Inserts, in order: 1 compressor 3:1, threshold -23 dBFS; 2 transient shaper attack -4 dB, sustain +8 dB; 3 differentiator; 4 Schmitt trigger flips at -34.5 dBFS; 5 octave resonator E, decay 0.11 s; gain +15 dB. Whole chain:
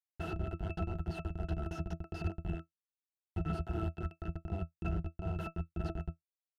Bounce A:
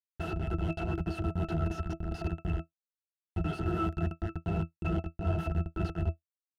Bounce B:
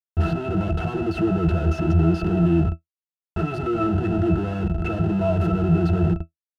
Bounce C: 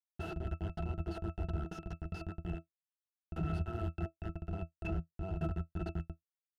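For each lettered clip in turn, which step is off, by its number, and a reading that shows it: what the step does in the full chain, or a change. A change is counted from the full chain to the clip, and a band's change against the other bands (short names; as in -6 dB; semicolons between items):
1, loudness change +5.5 LU; 3, 250 Hz band +4.5 dB; 2, momentary loudness spread change +1 LU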